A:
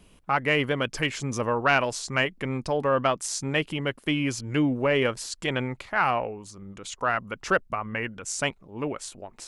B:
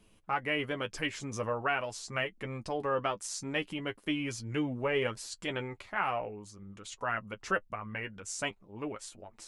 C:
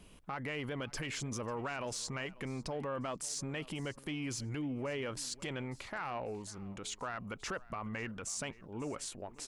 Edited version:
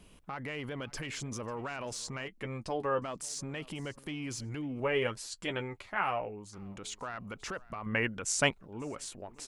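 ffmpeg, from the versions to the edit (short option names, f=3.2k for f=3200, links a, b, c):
-filter_complex "[1:a]asplit=2[a][b];[2:a]asplit=4[c][d][e][f];[c]atrim=end=2.282[g];[a]atrim=start=2.278:end=3.022[h];[d]atrim=start=3.018:end=4.802[i];[b]atrim=start=4.798:end=6.532[j];[e]atrim=start=6.528:end=7.862[k];[0:a]atrim=start=7.858:end=8.612[l];[f]atrim=start=8.608[m];[g][h]acrossfade=d=0.004:c1=hsin:c2=hsin[n];[n][i]acrossfade=d=0.004:c1=hsin:c2=hsin[o];[o][j]acrossfade=d=0.004:c1=hsin:c2=hsin[p];[p][k]acrossfade=d=0.004:c1=hsin:c2=hsin[q];[q][l]acrossfade=d=0.004:c1=hsin:c2=hsin[r];[r][m]acrossfade=d=0.004:c1=hsin:c2=hsin"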